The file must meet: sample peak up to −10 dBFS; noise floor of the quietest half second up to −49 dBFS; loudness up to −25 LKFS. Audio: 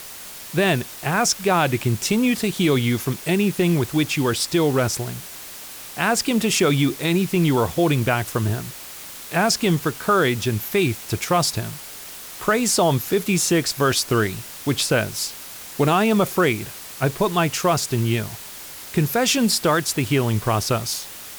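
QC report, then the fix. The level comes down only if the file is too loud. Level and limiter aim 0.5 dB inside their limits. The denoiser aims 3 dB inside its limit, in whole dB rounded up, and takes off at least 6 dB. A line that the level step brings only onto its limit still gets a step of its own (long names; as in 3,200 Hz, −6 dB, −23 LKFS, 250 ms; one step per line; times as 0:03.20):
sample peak −5.5 dBFS: out of spec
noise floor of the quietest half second −37 dBFS: out of spec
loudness −20.5 LKFS: out of spec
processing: broadband denoise 10 dB, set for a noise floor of −37 dBFS
level −5 dB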